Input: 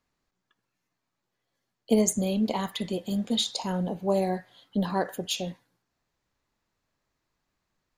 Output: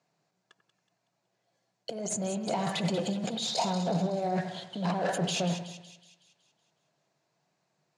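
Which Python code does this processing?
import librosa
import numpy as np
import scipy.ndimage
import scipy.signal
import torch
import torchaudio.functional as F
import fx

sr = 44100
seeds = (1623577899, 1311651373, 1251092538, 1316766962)

p1 = fx.over_compress(x, sr, threshold_db=-36.0, ratio=-1.0)
p2 = fx.leveller(p1, sr, passes=2)
p3 = 10.0 ** (-26.0 / 20.0) * np.tanh(p2 / 10.0 ** (-26.0 / 20.0))
p4 = fx.cabinet(p3, sr, low_hz=140.0, low_slope=24, high_hz=8400.0, hz=(150.0, 250.0, 680.0, 1200.0, 1900.0, 3300.0), db=(8, -7, 9, -5, -4, -4))
y = p4 + fx.echo_split(p4, sr, split_hz=2400.0, low_ms=92, high_ms=186, feedback_pct=52, wet_db=-9.5, dry=0)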